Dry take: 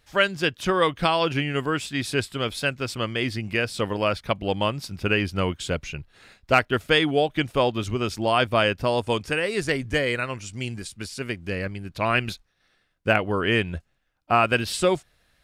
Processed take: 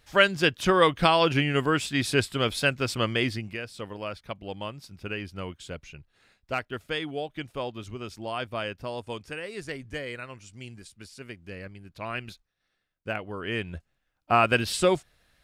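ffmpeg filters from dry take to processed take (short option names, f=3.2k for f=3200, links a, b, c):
-af "volume=11.5dB,afade=t=out:st=3.16:d=0.42:silence=0.237137,afade=t=in:st=13.38:d=1.06:silence=0.298538"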